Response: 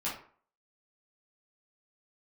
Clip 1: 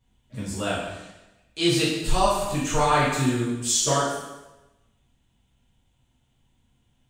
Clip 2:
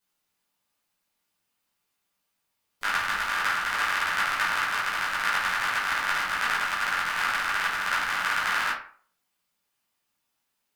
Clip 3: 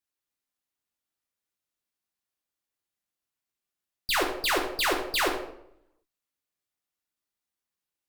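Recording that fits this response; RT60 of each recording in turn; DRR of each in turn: 2; 1.0, 0.45, 0.75 s; -9.0, -8.5, -0.5 dB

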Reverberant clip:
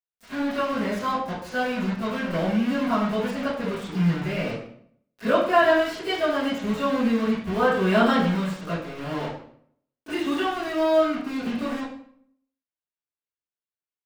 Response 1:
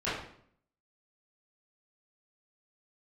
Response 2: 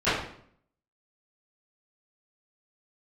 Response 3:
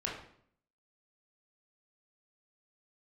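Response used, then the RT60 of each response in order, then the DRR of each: 2; 0.60, 0.60, 0.60 s; -13.0, -18.5, -4.0 dB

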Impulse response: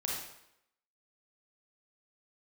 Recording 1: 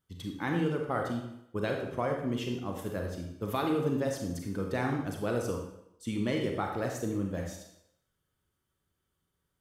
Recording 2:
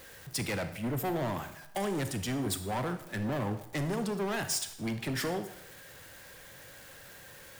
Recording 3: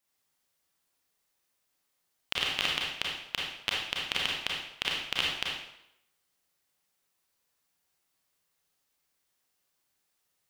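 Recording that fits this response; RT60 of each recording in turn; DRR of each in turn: 3; 0.80, 0.80, 0.80 s; 1.5, 9.0, -3.5 dB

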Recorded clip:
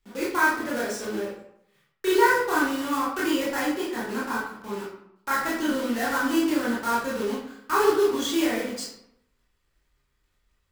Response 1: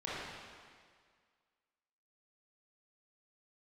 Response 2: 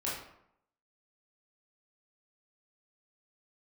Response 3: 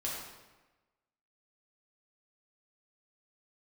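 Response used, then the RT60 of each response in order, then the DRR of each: 2; 1.9, 0.75, 1.2 s; -9.5, -7.5, -5.5 dB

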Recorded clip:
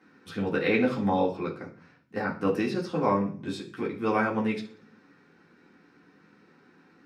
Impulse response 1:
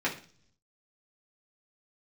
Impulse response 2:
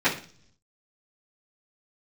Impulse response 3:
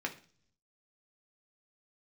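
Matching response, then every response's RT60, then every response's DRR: 1; 0.45, 0.45, 0.45 s; -6.0, -15.0, 1.5 dB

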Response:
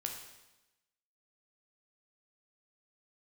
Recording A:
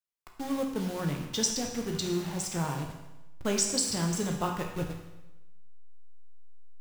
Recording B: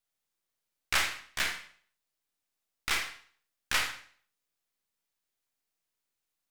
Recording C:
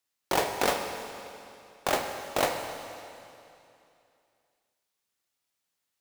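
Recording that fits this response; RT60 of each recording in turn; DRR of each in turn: A; 1.0, 0.50, 2.7 s; 1.5, 3.0, 4.0 dB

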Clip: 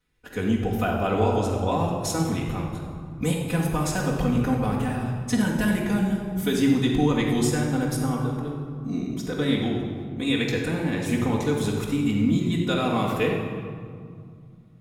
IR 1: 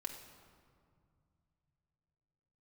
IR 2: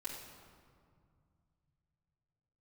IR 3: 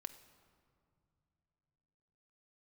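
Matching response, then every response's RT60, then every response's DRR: 2; 2.2 s, 2.2 s, not exponential; 1.5, -7.5, 8.5 dB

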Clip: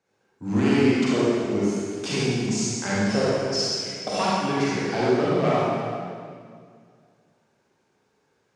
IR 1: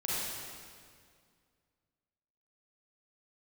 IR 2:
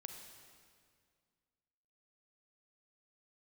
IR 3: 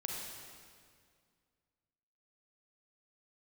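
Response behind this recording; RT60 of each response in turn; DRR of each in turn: 1; 2.1, 2.1, 2.1 s; -8.0, 4.0, -1.5 dB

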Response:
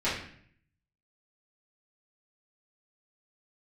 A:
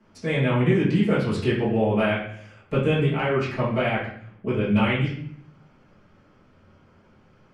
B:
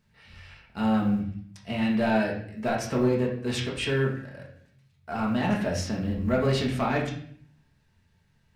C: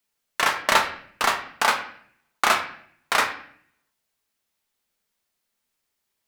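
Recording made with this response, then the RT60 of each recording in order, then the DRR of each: A; 0.60, 0.60, 0.60 s; -12.5, -3.5, 3.5 dB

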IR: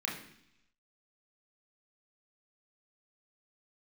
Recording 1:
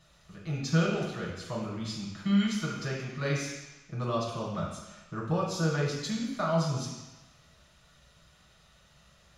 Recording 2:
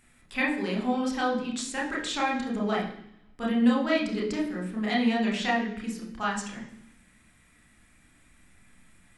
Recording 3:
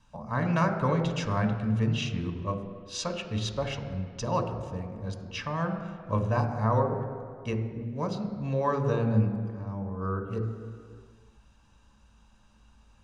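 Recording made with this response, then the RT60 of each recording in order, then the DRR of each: 2; 1.1, 0.70, 2.1 s; -5.0, -3.0, 6.0 dB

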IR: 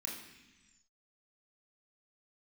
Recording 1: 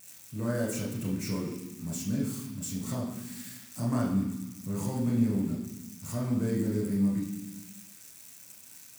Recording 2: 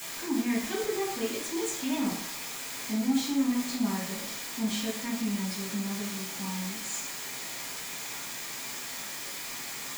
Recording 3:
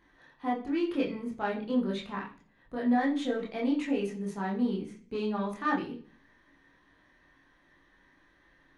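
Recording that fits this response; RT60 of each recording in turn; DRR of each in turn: 1; 1.1, 0.60, 0.40 s; -3.5, -8.0, -3.5 dB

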